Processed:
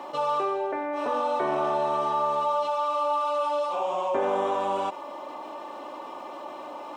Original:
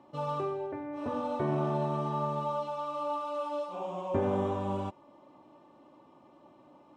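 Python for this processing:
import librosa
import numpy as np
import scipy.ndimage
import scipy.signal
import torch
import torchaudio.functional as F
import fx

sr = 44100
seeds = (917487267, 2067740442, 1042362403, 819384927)

y = scipy.signal.sosfilt(scipy.signal.butter(2, 560.0, 'highpass', fs=sr, output='sos'), x)
y = fx.env_flatten(y, sr, amount_pct=50)
y = y * 10.0 ** (8.0 / 20.0)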